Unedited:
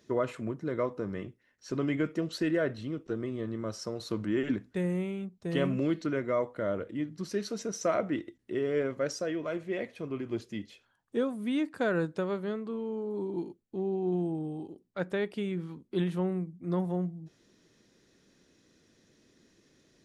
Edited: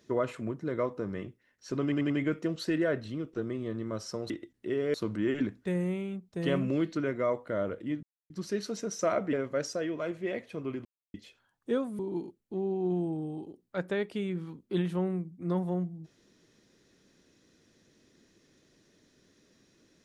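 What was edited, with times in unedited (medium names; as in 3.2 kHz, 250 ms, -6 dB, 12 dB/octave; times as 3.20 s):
1.83 s: stutter 0.09 s, 4 plays
7.12 s: insert silence 0.27 s
8.15–8.79 s: move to 4.03 s
10.31–10.60 s: mute
11.45–13.21 s: delete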